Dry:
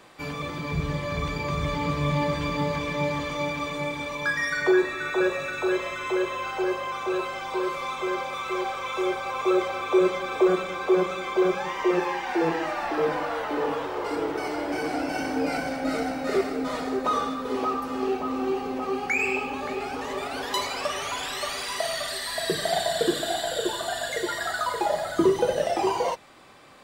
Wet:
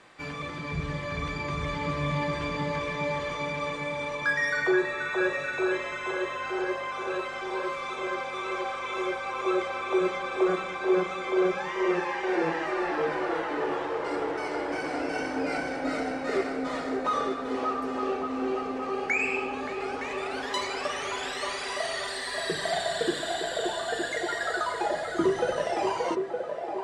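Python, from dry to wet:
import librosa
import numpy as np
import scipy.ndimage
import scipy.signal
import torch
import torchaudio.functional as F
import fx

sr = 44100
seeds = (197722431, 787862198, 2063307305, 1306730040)

y = scipy.signal.sosfilt(scipy.signal.butter(4, 9600.0, 'lowpass', fs=sr, output='sos'), x)
y = fx.peak_eq(y, sr, hz=1800.0, db=5.0, octaves=0.93)
y = fx.echo_banded(y, sr, ms=914, feedback_pct=64, hz=530.0, wet_db=-4.5)
y = y * 10.0 ** (-4.5 / 20.0)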